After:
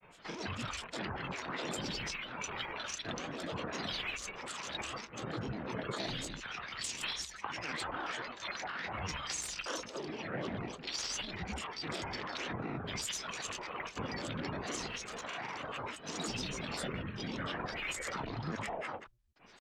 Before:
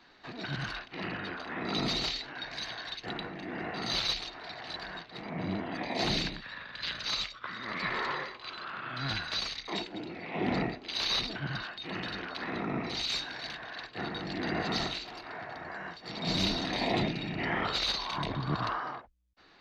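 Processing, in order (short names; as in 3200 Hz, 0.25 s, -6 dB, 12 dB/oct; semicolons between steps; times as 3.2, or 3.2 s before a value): compressor 10:1, threshold -36 dBFS, peak gain reduction 11.5 dB; grains 0.1 s, grains 20/s, spray 27 ms, pitch spread up and down by 12 st; gain +2 dB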